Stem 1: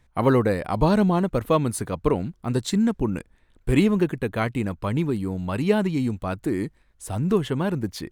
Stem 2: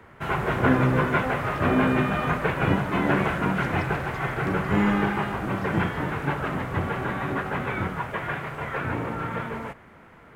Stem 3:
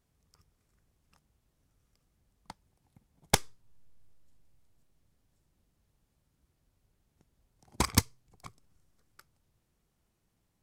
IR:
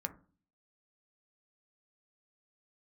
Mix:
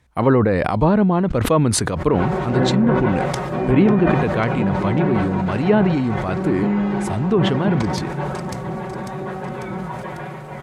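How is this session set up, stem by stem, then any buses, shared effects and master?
+3.0 dB, 0.00 s, no send, no echo send, none
-2.0 dB, 1.90 s, no send, no echo send, high-order bell 1.9 kHz -8 dB; comb 5.4 ms, depth 88%
-6.5 dB, 0.00 s, no send, echo send -3.5 dB, none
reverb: none
echo: feedback delay 546 ms, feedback 49%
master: high-pass 48 Hz; low-pass that closes with the level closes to 2 kHz, closed at -12 dBFS; decay stretcher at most 24 dB/s

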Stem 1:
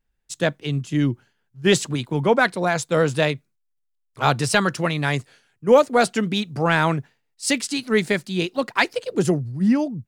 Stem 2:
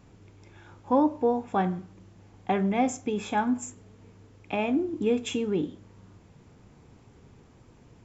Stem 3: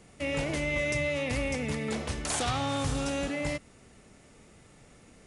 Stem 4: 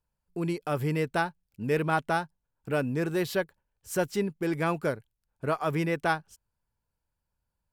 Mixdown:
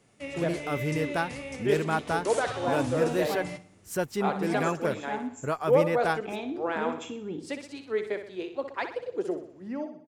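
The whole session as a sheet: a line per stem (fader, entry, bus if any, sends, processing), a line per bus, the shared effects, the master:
-11.5 dB, 0.00 s, no send, echo send -9 dB, high-pass 390 Hz 24 dB/octave; tilt EQ -4.5 dB/octave
-9.0 dB, 1.75 s, no send, echo send -12 dB, high-pass 78 Hz
-3.0 dB, 0.00 s, no send, echo send -17 dB, high-pass 110 Hz; flange 1.1 Hz, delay 6.8 ms, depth 7.5 ms, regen +43%
-1.5 dB, 0.00 s, no send, no echo send, none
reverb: none
echo: feedback delay 62 ms, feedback 48%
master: none

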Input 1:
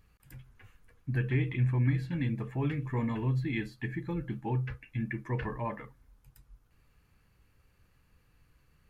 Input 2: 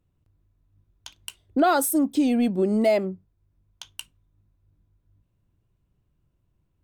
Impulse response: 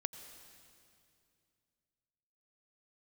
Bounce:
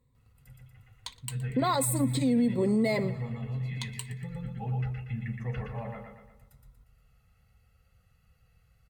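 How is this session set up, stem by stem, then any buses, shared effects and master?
-4.0 dB, 0.15 s, no send, echo send -4.5 dB, comb 1.5 ms, depth 99%; auto duck -10 dB, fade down 1.45 s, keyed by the second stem
+2.0 dB, 0.00 s, no send, echo send -22 dB, rippled EQ curve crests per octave 0.99, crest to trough 14 dB; compression, threshold -17 dBFS, peak gain reduction 5.5 dB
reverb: none
echo: feedback delay 118 ms, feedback 48%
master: comb of notches 300 Hz; peak limiter -18.5 dBFS, peak gain reduction 8 dB

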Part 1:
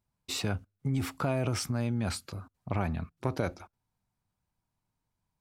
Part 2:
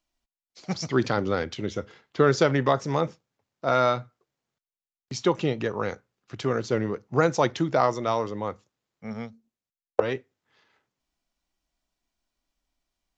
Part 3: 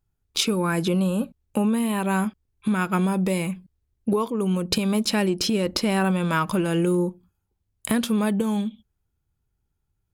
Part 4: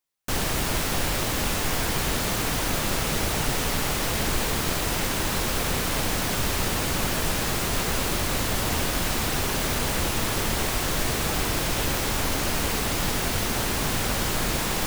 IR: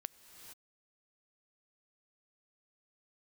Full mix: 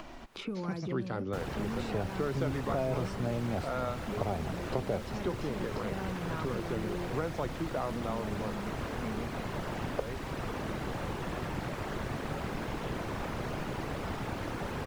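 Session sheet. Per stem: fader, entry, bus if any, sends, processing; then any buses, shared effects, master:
-3.5 dB, 1.50 s, no send, high-order bell 560 Hz +8 dB 1.3 oct
-13.5 dB, 0.00 s, send -7.5 dB, upward compressor, threshold -23 dBFS
-19.0 dB, 0.00 s, no send, none
-12.0 dB, 1.05 s, no send, whisper effect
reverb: on, pre-delay 3 ms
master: low-pass 1.5 kHz 6 dB/octave; three bands compressed up and down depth 70%

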